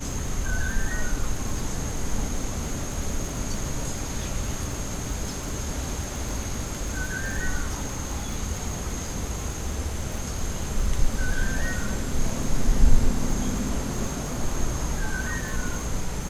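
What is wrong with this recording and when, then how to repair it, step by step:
surface crackle 28 per second −30 dBFS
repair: click removal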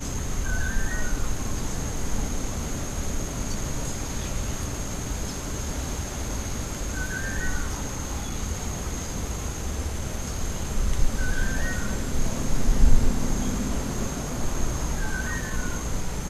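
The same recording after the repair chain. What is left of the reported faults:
none of them is left

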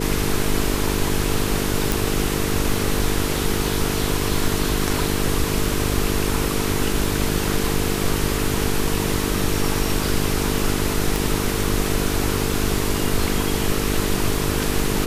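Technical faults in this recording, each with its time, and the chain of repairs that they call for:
mains buzz 50 Hz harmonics 9 −25 dBFS
0:01.92: click
0:11.16: click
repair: click removal
hum removal 50 Hz, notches 9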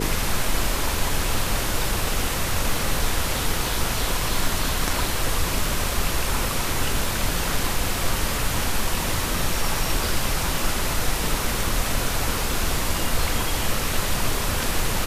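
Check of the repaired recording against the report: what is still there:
0:11.16: click

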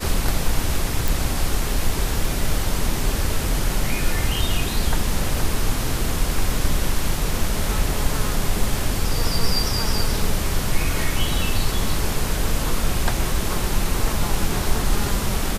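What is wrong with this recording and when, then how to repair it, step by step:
0:01.08: click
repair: click removal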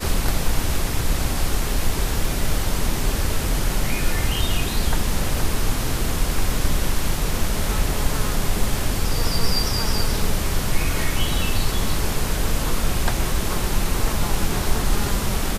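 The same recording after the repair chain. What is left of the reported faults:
none of them is left

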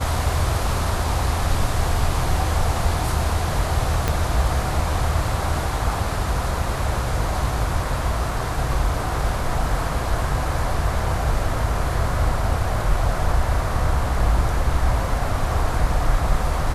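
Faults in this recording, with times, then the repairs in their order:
0:04.08: click −6 dBFS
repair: click removal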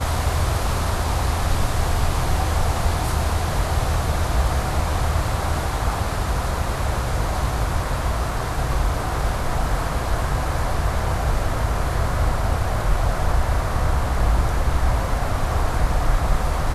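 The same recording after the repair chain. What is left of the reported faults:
0:04.08: click

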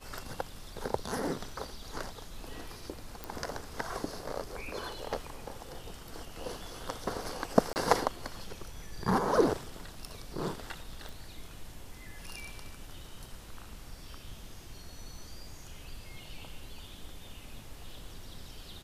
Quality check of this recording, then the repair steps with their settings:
0:03.24: click
0:07.73–0:07.76: drop-out 29 ms
0:11.09: click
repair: click removal
repair the gap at 0:07.73, 29 ms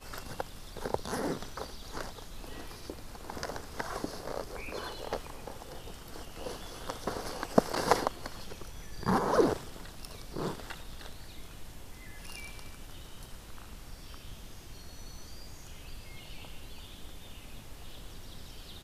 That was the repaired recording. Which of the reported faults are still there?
none of them is left

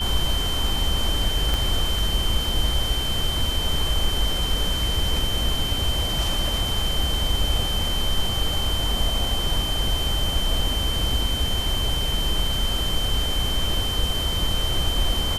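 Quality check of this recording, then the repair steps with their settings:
whistle 3,100 Hz −26 dBFS
0:01.54: click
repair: click removal
notch filter 3,100 Hz, Q 30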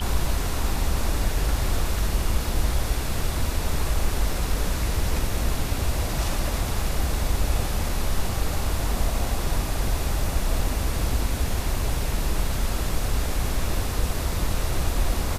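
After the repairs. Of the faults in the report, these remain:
0:01.54: click

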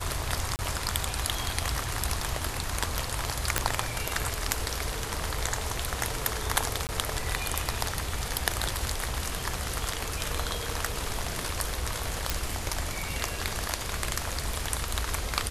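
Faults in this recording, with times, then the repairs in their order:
0:00.56–0:00.59: drop-out 29 ms
0:03.58: click −5 dBFS
0:06.87–0:06.89: drop-out 19 ms
0:12.30: click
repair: click removal
repair the gap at 0:00.56, 29 ms
repair the gap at 0:06.87, 19 ms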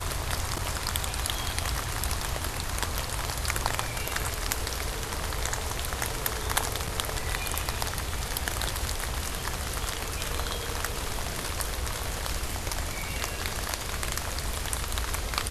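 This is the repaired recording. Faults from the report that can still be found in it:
none of them is left

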